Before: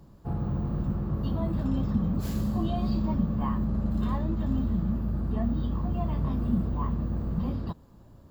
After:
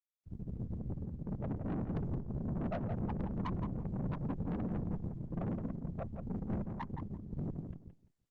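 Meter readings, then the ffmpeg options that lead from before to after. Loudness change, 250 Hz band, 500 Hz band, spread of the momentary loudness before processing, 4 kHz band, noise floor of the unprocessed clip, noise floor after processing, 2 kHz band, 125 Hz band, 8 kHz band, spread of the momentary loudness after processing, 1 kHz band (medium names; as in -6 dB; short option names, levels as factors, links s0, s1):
-10.5 dB, -10.5 dB, -6.0 dB, 3 LU, under -15 dB, -53 dBFS, -78 dBFS, -5.5 dB, -9.5 dB, no reading, 6 LU, -9.0 dB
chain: -filter_complex "[0:a]afftfilt=real='re*gte(hypot(re,im),0.2)':imag='im*gte(hypot(re,im),0.2)':win_size=1024:overlap=0.75,areverse,acompressor=mode=upward:threshold=0.0141:ratio=2.5,areverse,highpass=f=220:t=q:w=0.5412,highpass=f=220:t=q:w=1.307,lowpass=f=3500:t=q:w=0.5176,lowpass=f=3500:t=q:w=0.7071,lowpass=f=3500:t=q:w=1.932,afreqshift=-63,afftfilt=real='hypot(re,im)*cos(2*PI*random(0))':imag='hypot(re,im)*sin(2*PI*random(1))':win_size=512:overlap=0.75,aeval=exprs='(tanh(200*val(0)+0.75)-tanh(0.75))/200':c=same,asplit=2[s0][s1];[s1]adelay=170,lowpass=f=2500:p=1,volume=0.473,asplit=2[s2][s3];[s3]adelay=170,lowpass=f=2500:p=1,volume=0.18,asplit=2[s4][s5];[s5]adelay=170,lowpass=f=2500:p=1,volume=0.18[s6];[s0][s2][s4][s6]amix=inputs=4:normalize=0,acontrast=83,volume=1.78" -ar 48000 -c:a libopus -b:a 20k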